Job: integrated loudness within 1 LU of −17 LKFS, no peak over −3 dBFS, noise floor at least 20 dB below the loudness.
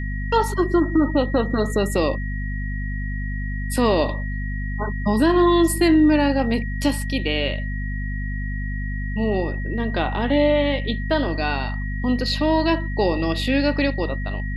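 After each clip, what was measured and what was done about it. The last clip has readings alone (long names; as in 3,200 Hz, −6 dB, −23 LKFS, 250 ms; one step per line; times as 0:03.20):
mains hum 50 Hz; hum harmonics up to 250 Hz; level of the hum −24 dBFS; interfering tone 1,900 Hz; level of the tone −34 dBFS; integrated loudness −22.0 LKFS; sample peak −6.5 dBFS; target loudness −17.0 LKFS
→ hum removal 50 Hz, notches 5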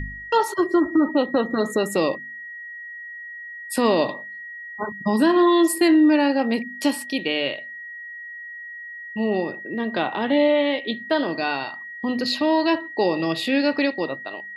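mains hum none found; interfering tone 1,900 Hz; level of the tone −34 dBFS
→ notch filter 1,900 Hz, Q 30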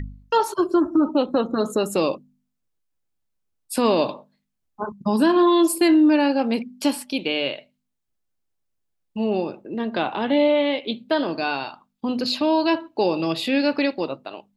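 interfering tone none found; integrated loudness −21.5 LKFS; sample peak −8.0 dBFS; target loudness −17.0 LKFS
→ level +4.5 dB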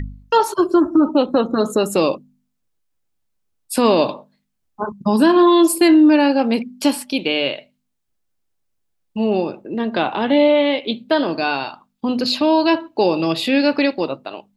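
integrated loudness −17.0 LKFS; sample peak −3.5 dBFS; background noise floor −72 dBFS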